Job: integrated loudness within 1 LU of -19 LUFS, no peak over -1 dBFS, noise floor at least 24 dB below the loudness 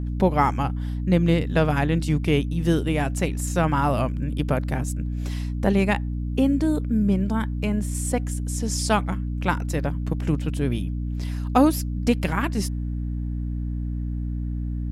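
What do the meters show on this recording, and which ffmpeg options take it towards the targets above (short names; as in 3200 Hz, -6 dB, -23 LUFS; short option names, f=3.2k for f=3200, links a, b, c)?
hum 60 Hz; harmonics up to 300 Hz; hum level -25 dBFS; loudness -24.5 LUFS; peak -4.0 dBFS; loudness target -19.0 LUFS
-> -af "bandreject=f=60:t=h:w=6,bandreject=f=120:t=h:w=6,bandreject=f=180:t=h:w=6,bandreject=f=240:t=h:w=6,bandreject=f=300:t=h:w=6"
-af "volume=5.5dB,alimiter=limit=-1dB:level=0:latency=1"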